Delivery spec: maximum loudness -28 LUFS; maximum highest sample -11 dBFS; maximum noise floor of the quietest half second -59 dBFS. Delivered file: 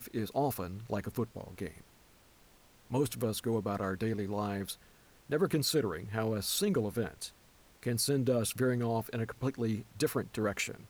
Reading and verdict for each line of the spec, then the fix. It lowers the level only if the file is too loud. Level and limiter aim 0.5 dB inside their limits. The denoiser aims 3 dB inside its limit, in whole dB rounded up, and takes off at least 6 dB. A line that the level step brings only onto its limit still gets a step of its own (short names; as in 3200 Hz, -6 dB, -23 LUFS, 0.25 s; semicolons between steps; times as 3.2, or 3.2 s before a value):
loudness -34.0 LUFS: OK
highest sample -18.5 dBFS: OK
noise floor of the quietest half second -62 dBFS: OK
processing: none